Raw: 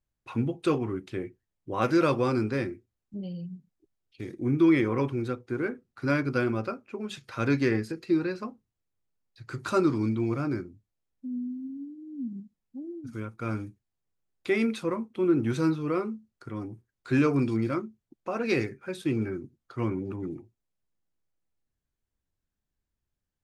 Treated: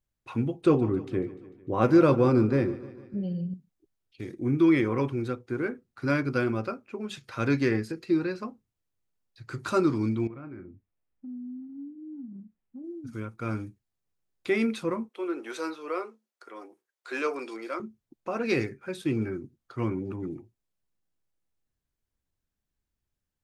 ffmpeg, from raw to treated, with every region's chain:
-filter_complex "[0:a]asettb=1/sr,asplit=3[a][b][c];[a]atrim=end=0.614[d];[b]atrim=start=0.61:end=3.54,asetpts=PTS-STARTPTS,afade=t=in:d=0.004:c=qsin,afade=t=out:st=2.926:d=0.004:c=qsin,tiltshelf=f=1.2k:g=5.5,aecho=1:1:149|298|447|596|745:0.133|0.0787|0.0464|0.0274|0.0162,atrim=end_sample=129213[e];[c]atrim=start=3.536[f];[d][e]acrossfade=d=0.004:c1=hsin:c2=qsin[g];[g][f]acrossfade=d=0.004:c1=qsin:c2=hsin,asettb=1/sr,asplit=3[h][i][j];[h]atrim=end=10.274[k];[i]atrim=start=10.27:end=12.84,asetpts=PTS-STARTPTS,afade=t=in:d=0.004:c=qsin,afade=t=out:st=2.566:d=0.004:c=qsin,lowpass=f=2.7k:w=0.5412,lowpass=f=2.7k:w=1.3066,acompressor=threshold=-38dB:ratio=10:attack=3.2:release=140:knee=1:detection=peak,asplit=2[l][m];[m]adelay=32,volume=-11dB[n];[l][n]amix=inputs=2:normalize=0,atrim=end_sample=113337[o];[j]atrim=start=12.836[p];[k][o]acrossfade=d=0.004:c1=hsin:c2=qsin[q];[q][p]acrossfade=d=0.004:c1=qsin:c2=hsin,asettb=1/sr,asplit=3[r][s][t];[r]atrim=end=15.094[u];[s]atrim=start=15.09:end=17.8,asetpts=PTS-STARTPTS,afade=t=in:d=0.004:c=qsin,afade=t=out:st=2.706:d=0.004:c=qsin,highpass=f=430:w=0.5412,highpass=f=430:w=1.3066,asoftclip=type=hard:threshold=-18.5dB[v];[t]atrim=start=17.796[w];[u][v]acrossfade=d=0.004:c1=hsin:c2=qsin[x];[x][w]acrossfade=d=0.004:c1=qsin:c2=hsin"

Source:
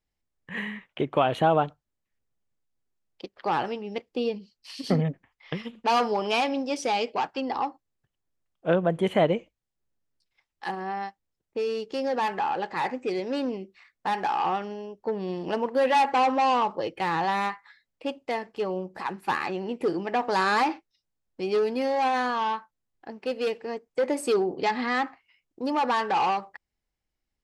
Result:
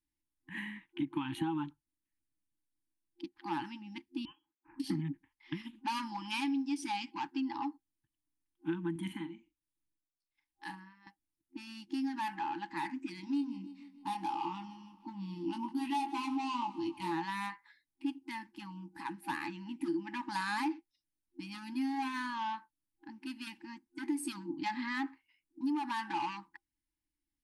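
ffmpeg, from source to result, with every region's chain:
-filter_complex "[0:a]asettb=1/sr,asplit=3[a][b][c];[a]atrim=end=4.254[d];[b]atrim=start=4.25:end=4.8,asetpts=PTS-STARTPTS,afade=t=in:d=0.004:c=qsin,afade=t=out:st=0.546:d=0.004:c=qsin,highpass=1.5k,lowpass=f=3k:t=q:w=0.5098,lowpass=f=3k:t=q:w=0.6013,lowpass=f=3k:t=q:w=0.9,lowpass=f=3k:t=q:w=2.563,afreqshift=-3500[e];[c]atrim=start=4.796[f];[d][e]acrossfade=d=0.004:c1=hsin:c2=qsin[g];[g][f]acrossfade=d=0.004:c1=qsin:c2=hsin,asettb=1/sr,asplit=3[h][i][j];[h]atrim=end=8.914[k];[i]atrim=start=8.91:end=11.07,asetpts=PTS-STARTPTS,afade=t=in:d=0.004:c=qsin,afade=t=out:st=2.156:d=0.004:c=qsin,tremolo=f=1.2:d=0.85,asplit=2[l][m];[m]adelay=42,volume=-10dB[n];[l][n]amix=inputs=2:normalize=0,atrim=end_sample=95256[o];[j]atrim=start=11.066[p];[k][o]acrossfade=d=0.004:c1=hsin:c2=qsin[q];[q][p]acrossfade=d=0.004:c1=qsin:c2=hsin,asettb=1/sr,asplit=3[r][s][t];[r]atrim=end=13.214[u];[s]atrim=start=13.21:end=17.12,asetpts=PTS-STARTPTS,afade=t=in:d=0.004:c=qsin,afade=t=out:st=3.906:d=0.004:c=qsin,equalizer=f=1.7k:w=3:g=-15,asplit=2[v][w];[w]adelay=21,volume=-5.5dB[x];[v][x]amix=inputs=2:normalize=0,atrim=end_sample=172431,aecho=1:1:154|308|462|616|770:0.112|0.0662|0.0391|0.023|0.0136,atrim=end_sample=172431[y];[t]atrim=start=17.116[z];[u][y]acrossfade=d=0.004:c1=hsin:c2=qsin[aa];[aa][z]acrossfade=d=0.004:c1=qsin:c2=hsin,afftfilt=real='re*(1-between(b*sr/4096,350,800))':imag='im*(1-between(b*sr/4096,350,800))':win_size=4096:overlap=0.75,superequalizer=6b=3.55:10b=0.501:16b=2.82,acompressor=threshold=-22dB:ratio=6,volume=-8.5dB"

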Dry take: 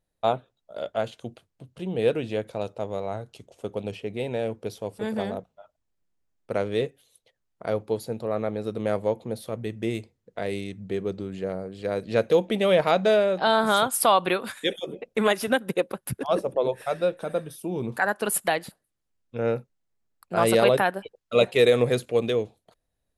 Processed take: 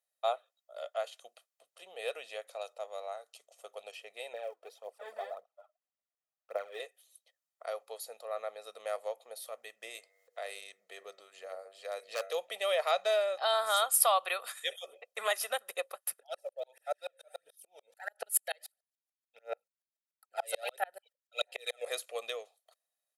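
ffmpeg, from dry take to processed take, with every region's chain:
-filter_complex "[0:a]asettb=1/sr,asplit=3[a][b][c];[a]atrim=end=4.334[d];[b]atrim=start=4.33:end=6.8,asetpts=PTS-STARTPTS,afade=t=in:d=0.004:c=qsin,afade=t=out:st=2.466:d=0.004:c=qsin,lowpass=f=1.2k:p=1,aphaser=in_gain=1:out_gain=1:delay=3.3:decay=0.61:speed=1.8:type=triangular[e];[c]atrim=start=6.796[f];[d][e]acrossfade=d=0.004:c1=hsin:c2=qsin[g];[g][f]acrossfade=d=0.004:c1=qsin:c2=hsin,asettb=1/sr,asplit=3[h][i][j];[h]atrim=end=9.874[k];[i]atrim=start=9.87:end=12.31,asetpts=PTS-STARTPTS,afade=t=in:d=0.004:c=qsin,afade=t=out:st=2.436:d=0.004:c=qsin,bandreject=f=96.58:t=h:w=4,bandreject=f=193.16:t=h:w=4,bandreject=f=289.74:t=h:w=4,bandreject=f=386.32:t=h:w=4,bandreject=f=482.9:t=h:w=4,bandreject=f=579.48:t=h:w=4,bandreject=f=676.06:t=h:w=4,bandreject=f=772.64:t=h:w=4,bandreject=f=869.22:t=h:w=4,bandreject=f=965.8:t=h:w=4,bandreject=f=1.06238k:t=h:w=4,bandreject=f=1.15896k:t=h:w=4,bandreject=f=1.25554k:t=h:w=4,bandreject=f=1.35212k:t=h:w=4,bandreject=f=1.4487k:t=h:w=4,bandreject=f=1.54528k:t=h:w=4,bandreject=f=1.64186k:t=h:w=4,bandreject=f=1.73844k:t=h:w=4,bandreject=f=1.83502k:t=h:w=4,bandreject=f=1.9316k:t=h:w=4,bandreject=f=2.02818k:t=h:w=4,bandreject=f=2.12476k:t=h:w=4,bandreject=f=2.22134k:t=h:w=4,acompressor=mode=upward:threshold=-43dB:ratio=2.5:attack=3.2:release=140:knee=2.83:detection=peak,aeval=exprs='0.168*(abs(mod(val(0)/0.168+3,4)-2)-1)':c=same[l];[j]atrim=start=12.306[m];[k][l]acrossfade=d=0.004:c1=hsin:c2=qsin[n];[n][m]acrossfade=d=0.004:c1=qsin:c2=hsin,asettb=1/sr,asplit=3[o][p][q];[o]atrim=end=16.204[r];[p]atrim=start=16.2:end=21.86,asetpts=PTS-STARTPTS,afade=t=in:d=0.004:c=qsin,afade=t=out:st=5.656:d=0.004:c=qsin,asuperstop=centerf=1100:order=12:qfactor=3.3,aphaser=in_gain=1:out_gain=1:delay=1.9:decay=0.59:speed=1.5:type=sinusoidal,aeval=exprs='val(0)*pow(10,-39*if(lt(mod(-6.9*n/s,1),2*abs(-6.9)/1000),1-mod(-6.9*n/s,1)/(2*abs(-6.9)/1000),(mod(-6.9*n/s,1)-2*abs(-6.9)/1000)/(1-2*abs(-6.9)/1000))/20)':c=same[s];[q]atrim=start=21.856[t];[r][s]acrossfade=d=0.004:c1=hsin:c2=qsin[u];[u][t]acrossfade=d=0.004:c1=qsin:c2=hsin,highpass=f=610:w=0.5412,highpass=f=610:w=1.3066,aemphasis=mode=production:type=cd,aecho=1:1:1.6:0.51,volume=-8.5dB"

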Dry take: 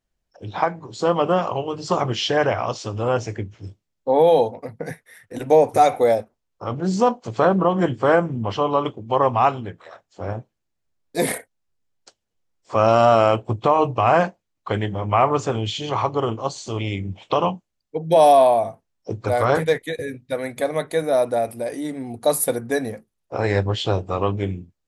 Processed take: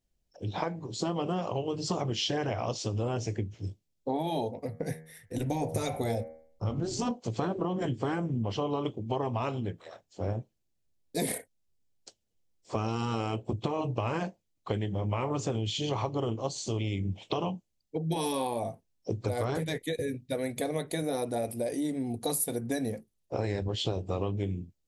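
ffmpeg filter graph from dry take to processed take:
-filter_complex "[0:a]asettb=1/sr,asplit=3[a][b][c];[a]atrim=end=4.564[d];[b]atrim=start=4.56:end=7.11,asetpts=PTS-STARTPTS,afade=t=in:d=0.004:c=qsin,afade=t=out:st=2.546:d=0.004:c=qsin,asubboost=boost=6:cutoff=170,bandreject=f=79.4:t=h:w=4,bandreject=f=158.8:t=h:w=4,bandreject=f=238.2:t=h:w=4,bandreject=f=317.6:t=h:w=4,bandreject=f=397:t=h:w=4,bandreject=f=476.4:t=h:w=4,bandreject=f=555.8:t=h:w=4,bandreject=f=635.2:t=h:w=4,bandreject=f=714.6:t=h:w=4,bandreject=f=794:t=h:w=4,bandreject=f=873.4:t=h:w=4,bandreject=f=952.8:t=h:w=4,bandreject=f=1.0322k:t=h:w=4,bandreject=f=1.1116k:t=h:w=4,bandreject=f=1.191k:t=h:w=4,bandreject=f=1.2704k:t=h:w=4,bandreject=f=1.3498k:t=h:w=4,bandreject=f=1.4292k:t=h:w=4,bandreject=f=1.5086k:t=h:w=4,bandreject=f=1.588k:t=h:w=4,bandreject=f=1.6674k:t=h:w=4,bandreject=f=1.7468k:t=h:w=4,bandreject=f=1.8262k:t=h:w=4,bandreject=f=1.9056k:t=h:w=4,bandreject=f=1.985k:t=h:w=4,bandreject=f=2.0644k:t=h:w=4,bandreject=f=2.1438k:t=h:w=4,bandreject=f=2.2232k:t=h:w=4,bandreject=f=2.3026k:t=h:w=4[e];[c]atrim=start=7.106[f];[d][e]acrossfade=d=0.004:c1=hsin:c2=qsin[g];[g][f]acrossfade=d=0.004:c1=qsin:c2=hsin,afftfilt=real='re*lt(hypot(re,im),0.891)':imag='im*lt(hypot(re,im),0.891)':win_size=1024:overlap=0.75,equalizer=f=1.3k:w=0.81:g=-11,acompressor=threshold=-27dB:ratio=6"

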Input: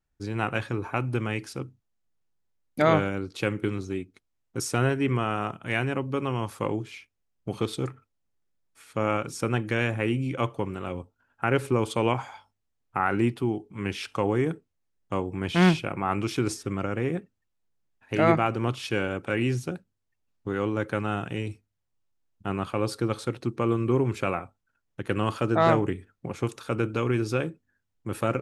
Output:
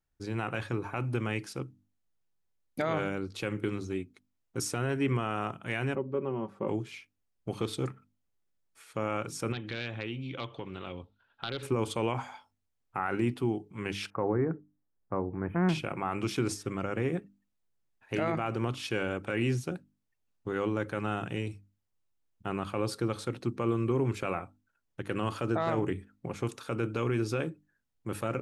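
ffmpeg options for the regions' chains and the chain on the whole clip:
-filter_complex "[0:a]asettb=1/sr,asplit=3[a][b][c];[a]atrim=end=5.954[d];[b]atrim=start=5.95:end=6.68,asetpts=PTS-STARTPTS,afade=t=in:d=0.004:c=qsin,afade=t=out:st=0.726:d=0.004:c=qsin,bandpass=f=320:t=q:w=0.76,aecho=1:1:5.2:0.57,atrim=end_sample=32193[e];[c]atrim=start=6.676[f];[d][e]acrossfade=d=0.004:c1=hsin:c2=qsin[g];[g][f]acrossfade=d=0.004:c1=qsin:c2=hsin,asettb=1/sr,asplit=3[h][i][j];[h]atrim=end=9.524[k];[i]atrim=start=9.52:end=11.63,asetpts=PTS-STARTPTS,afade=t=in:d=0.004:c=qsin,afade=t=out:st=2.106:d=0.004:c=qsin,aeval=exprs='0.2*(abs(mod(val(0)/0.2+3,4)-2)-1)':c=same,acompressor=threshold=-35dB:ratio=2.5:attack=3.2:release=140:knee=1:detection=peak,lowpass=f=3.7k:t=q:w=5.3[l];[j]atrim=start=11.626[m];[k][l]acrossfade=d=0.004:c1=hsin:c2=qsin[n];[n][m]acrossfade=d=0.004:c1=qsin:c2=hsin,asettb=1/sr,asplit=3[o][p][q];[o]atrim=end=14.104[r];[p]atrim=start=14.1:end=15.69,asetpts=PTS-STARTPTS,afade=t=in:d=0.004:c=qsin,afade=t=out:st=1.586:d=0.004:c=qsin,asuperstop=centerf=5200:order=8:qfactor=0.51,aemphasis=mode=reproduction:type=75kf[s];[q]atrim=start=15.686[t];[r][s]acrossfade=d=0.004:c1=hsin:c2=qsin[u];[u][t]acrossfade=d=0.004:c1=qsin:c2=hsin,bandreject=f=50:t=h:w=6,bandreject=f=100:t=h:w=6,bandreject=f=150:t=h:w=6,bandreject=f=200:t=h:w=6,bandreject=f=250:t=h:w=6,bandreject=f=300:t=h:w=6,alimiter=limit=-16.5dB:level=0:latency=1:release=42,volume=-2.5dB"

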